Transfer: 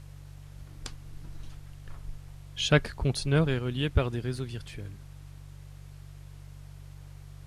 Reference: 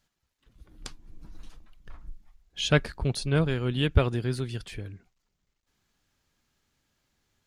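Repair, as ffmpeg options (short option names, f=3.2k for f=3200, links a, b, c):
-af "bandreject=f=47.8:t=h:w=4,bandreject=f=95.6:t=h:w=4,bandreject=f=143.4:t=h:w=4,agate=range=-21dB:threshold=-38dB,asetnsamples=n=441:p=0,asendcmd='3.59 volume volume 3.5dB',volume=0dB"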